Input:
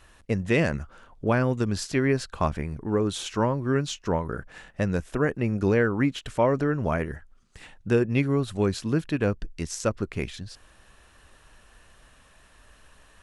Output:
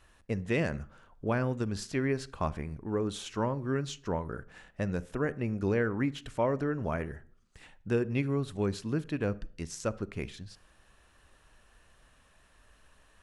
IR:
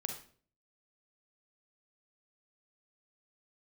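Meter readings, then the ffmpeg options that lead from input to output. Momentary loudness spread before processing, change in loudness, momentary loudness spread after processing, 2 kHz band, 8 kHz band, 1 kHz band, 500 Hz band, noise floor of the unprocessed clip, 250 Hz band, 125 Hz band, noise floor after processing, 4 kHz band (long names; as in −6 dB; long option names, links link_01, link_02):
11 LU, −6.5 dB, 11 LU, −7.0 dB, −8.0 dB, −6.5 dB, −6.5 dB, −57 dBFS, −6.5 dB, −6.5 dB, −64 dBFS, −7.5 dB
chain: -filter_complex "[0:a]asplit=2[link_01][link_02];[1:a]atrim=start_sample=2205,highshelf=frequency=3600:gain=-10[link_03];[link_02][link_03]afir=irnorm=-1:irlink=0,volume=-11dB[link_04];[link_01][link_04]amix=inputs=2:normalize=0,volume=-8.5dB"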